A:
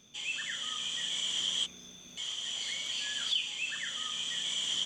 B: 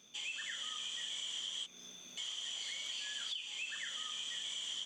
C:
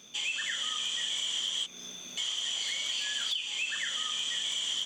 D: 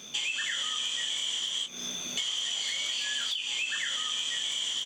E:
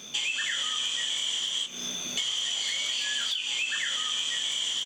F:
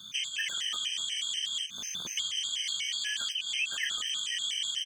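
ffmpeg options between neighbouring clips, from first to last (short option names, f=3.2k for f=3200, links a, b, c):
-af "highpass=f=350:p=1,acompressor=threshold=-38dB:ratio=6,volume=-1dB"
-af "asoftclip=type=hard:threshold=-33dB,volume=9dB"
-filter_complex "[0:a]acompressor=threshold=-37dB:ratio=6,asplit=2[a][b];[b]adelay=20,volume=-8.5dB[c];[a][c]amix=inputs=2:normalize=0,volume=7.5dB"
-filter_complex "[0:a]asplit=6[a][b][c][d][e][f];[b]adelay=150,afreqshift=-92,volume=-21dB[g];[c]adelay=300,afreqshift=-184,volume=-25.2dB[h];[d]adelay=450,afreqshift=-276,volume=-29.3dB[i];[e]adelay=600,afreqshift=-368,volume=-33.5dB[j];[f]adelay=750,afreqshift=-460,volume=-37.6dB[k];[a][g][h][i][j][k]amix=inputs=6:normalize=0,volume=2dB"
-filter_complex "[0:a]acrossover=split=190|1200|2500[a][b][c][d];[b]acrusher=bits=6:mix=0:aa=0.000001[e];[a][e][c][d]amix=inputs=4:normalize=0,afftfilt=real='re*gt(sin(2*PI*4.1*pts/sr)*(1-2*mod(floor(b*sr/1024/1600),2)),0)':imag='im*gt(sin(2*PI*4.1*pts/sr)*(1-2*mod(floor(b*sr/1024/1600),2)),0)':win_size=1024:overlap=0.75"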